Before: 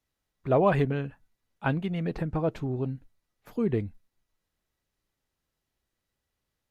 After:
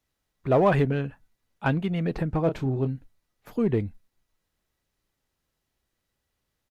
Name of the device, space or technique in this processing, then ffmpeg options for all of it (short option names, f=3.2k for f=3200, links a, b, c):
parallel distortion: -filter_complex "[0:a]asplit=3[a][b][c];[a]afade=t=out:st=2.45:d=0.02[d];[b]asplit=2[e][f];[f]adelay=30,volume=-8dB[g];[e][g]amix=inputs=2:normalize=0,afade=t=in:st=2.45:d=0.02,afade=t=out:st=2.86:d=0.02[h];[c]afade=t=in:st=2.86:d=0.02[i];[d][h][i]amix=inputs=3:normalize=0,asplit=2[j][k];[k]asoftclip=type=hard:threshold=-23dB,volume=-6.5dB[l];[j][l]amix=inputs=2:normalize=0"